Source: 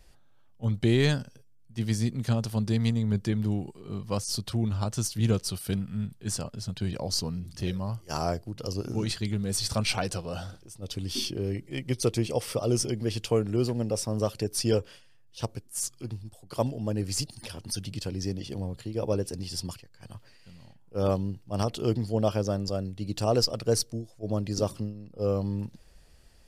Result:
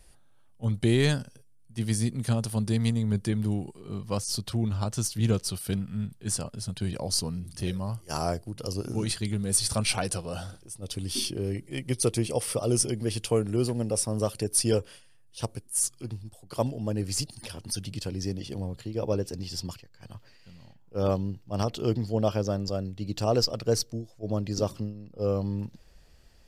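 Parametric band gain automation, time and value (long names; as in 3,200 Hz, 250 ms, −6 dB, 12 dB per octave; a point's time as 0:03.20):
parametric band 9,700 Hz 0.33 octaves
0:03.54 +13 dB
0:04.24 +3.5 dB
0:06.10 +3.5 dB
0:06.64 +13 dB
0:15.66 +13 dB
0:16.17 +3 dB
0:18.61 +3 dB
0:19.04 −8 dB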